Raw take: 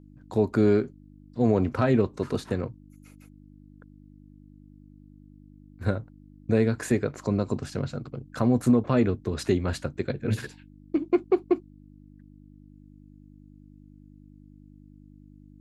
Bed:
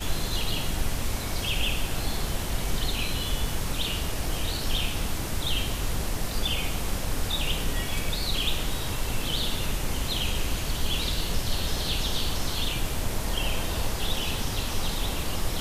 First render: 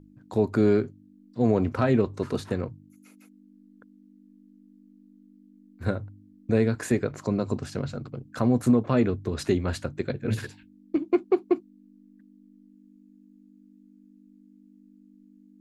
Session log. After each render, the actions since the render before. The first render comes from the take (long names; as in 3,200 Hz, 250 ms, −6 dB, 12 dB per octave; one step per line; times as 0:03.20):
hum removal 50 Hz, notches 3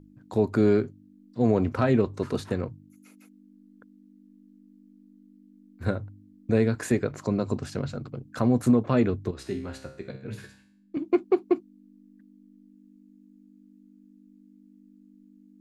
0:09.31–0:10.97: tuned comb filter 66 Hz, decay 0.59 s, mix 80%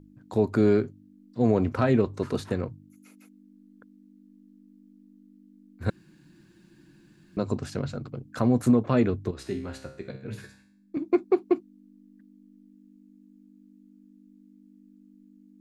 0:05.90–0:07.37: fill with room tone
0:10.41–0:11.35: notch filter 3,000 Hz, Q 5.3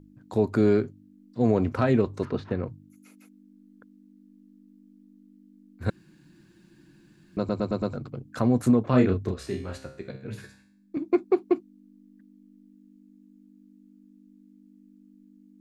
0:02.25–0:02.67: high-frequency loss of the air 230 metres
0:07.38: stutter in place 0.11 s, 5 plays
0:08.90–0:09.77: double-tracking delay 32 ms −3 dB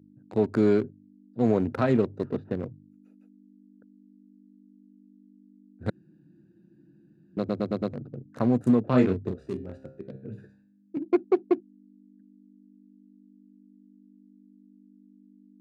adaptive Wiener filter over 41 samples
high-pass filter 120 Hz 12 dB per octave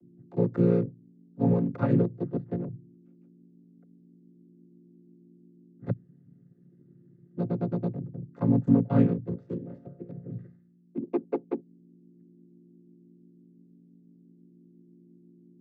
channel vocoder with a chord as carrier minor triad, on A#2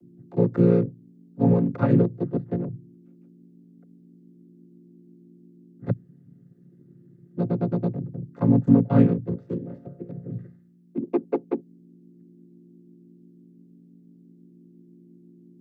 level +4.5 dB